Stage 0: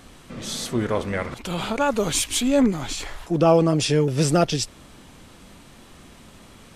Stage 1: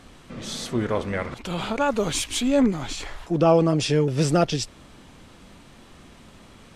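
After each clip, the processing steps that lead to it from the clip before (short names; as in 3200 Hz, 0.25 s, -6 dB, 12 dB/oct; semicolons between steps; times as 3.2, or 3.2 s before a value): high shelf 10000 Hz -11 dB; gain -1 dB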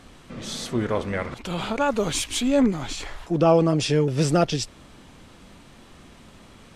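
nothing audible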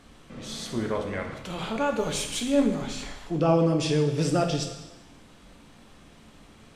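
plate-style reverb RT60 1 s, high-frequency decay 1×, pre-delay 0 ms, DRR 3.5 dB; gain -5.5 dB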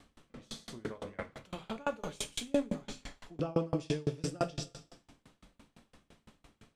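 dB-ramp tremolo decaying 5.9 Hz, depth 31 dB; gain -2.5 dB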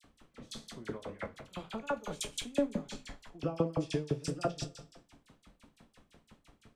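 dispersion lows, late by 42 ms, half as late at 1800 Hz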